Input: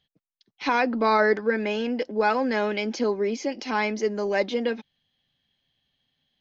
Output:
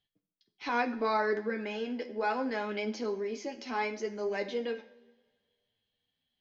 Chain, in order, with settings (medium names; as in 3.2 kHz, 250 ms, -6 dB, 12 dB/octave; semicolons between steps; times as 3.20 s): two-slope reverb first 0.58 s, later 1.9 s, from -18 dB, DRR 8 dB; flange 0.69 Hz, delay 9.3 ms, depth 3.4 ms, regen +43%; trim -5.5 dB